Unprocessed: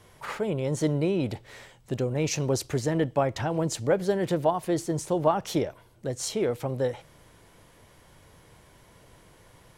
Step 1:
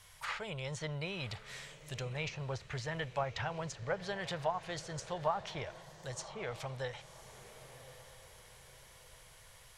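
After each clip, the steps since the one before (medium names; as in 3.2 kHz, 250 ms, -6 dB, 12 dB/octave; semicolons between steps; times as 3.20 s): amplifier tone stack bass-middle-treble 10-0-10; low-pass that closes with the level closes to 1.2 kHz, closed at -32.5 dBFS; echo that smears into a reverb 1085 ms, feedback 42%, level -14.5 dB; trim +3.5 dB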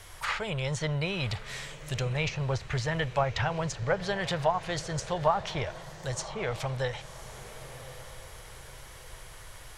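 bass shelf 81 Hz +9 dB; band noise 300–2000 Hz -65 dBFS; trim +8 dB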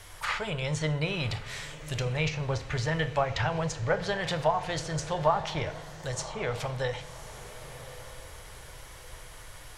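FDN reverb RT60 0.7 s, low-frequency decay 1.2×, high-frequency decay 0.75×, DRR 9 dB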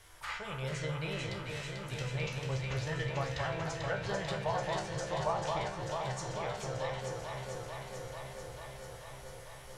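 feedback comb 66 Hz, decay 0.38 s, harmonics all, mix 80%; on a send: echo whose repeats swap between lows and highs 221 ms, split 1.5 kHz, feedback 88%, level -3 dB; on the sum: trim -2 dB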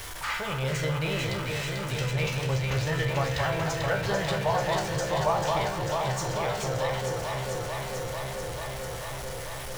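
jump at every zero crossing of -41.5 dBFS; trim +6.5 dB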